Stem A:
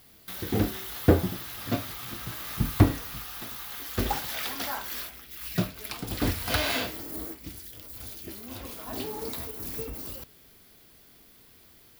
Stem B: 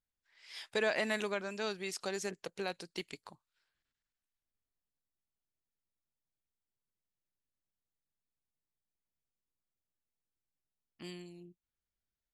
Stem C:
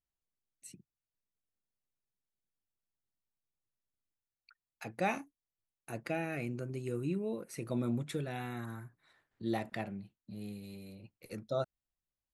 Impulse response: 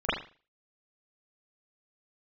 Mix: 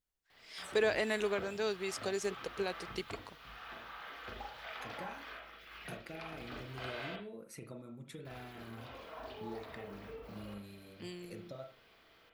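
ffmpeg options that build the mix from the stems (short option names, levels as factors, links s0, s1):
-filter_complex "[0:a]acrossover=split=100|2500[s0][s1][s2];[s0]acompressor=threshold=0.00708:ratio=4[s3];[s1]acompressor=threshold=0.00631:ratio=4[s4];[s2]acompressor=threshold=0.00447:ratio=4[s5];[s3][s4][s5]amix=inputs=3:normalize=0,acrossover=split=420 4300:gain=0.224 1 0.0794[s6][s7][s8];[s6][s7][s8]amix=inputs=3:normalize=0,adelay=300,volume=0.596,asplit=3[s9][s10][s11];[s9]atrim=end=7.16,asetpts=PTS-STARTPTS,afade=t=out:st=7.156:d=0.004:c=hsin[s12];[s10]atrim=start=7.16:end=8.25,asetpts=PTS-STARTPTS,volume=0[s13];[s11]atrim=start=8.25,asetpts=PTS-STARTPTS,afade=t=in:d=0.004:c=hsin[s14];[s12][s13][s14]concat=n=3:v=0:a=1,asplit=2[s15][s16];[s16]volume=0.282[s17];[1:a]equalizer=f=420:t=o:w=0.4:g=6,volume=0.891[s18];[2:a]acompressor=threshold=0.00794:ratio=10,volume=0.631,asplit=2[s19][s20];[s20]volume=0.15[s21];[3:a]atrim=start_sample=2205[s22];[s17][s21]amix=inputs=2:normalize=0[s23];[s23][s22]afir=irnorm=-1:irlink=0[s24];[s15][s18][s19][s24]amix=inputs=4:normalize=0"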